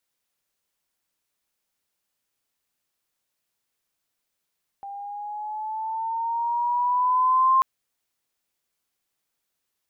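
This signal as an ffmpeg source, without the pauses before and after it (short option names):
-f lavfi -i "aevalsrc='pow(10,(-14.5+19*(t/2.79-1))/20)*sin(2*PI*794*2.79/(5*log(2)/12)*(exp(5*log(2)/12*t/2.79)-1))':d=2.79:s=44100"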